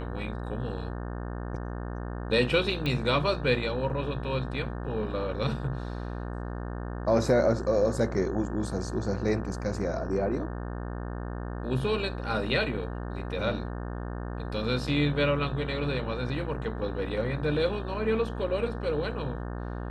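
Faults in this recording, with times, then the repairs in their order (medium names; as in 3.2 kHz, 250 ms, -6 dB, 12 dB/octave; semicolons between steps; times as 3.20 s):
buzz 60 Hz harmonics 30 -35 dBFS
2.86 s: pop -18 dBFS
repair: de-click; de-hum 60 Hz, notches 30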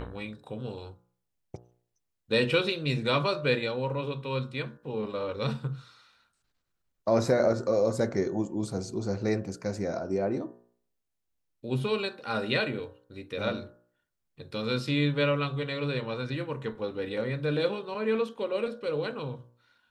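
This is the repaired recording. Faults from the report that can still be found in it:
nothing left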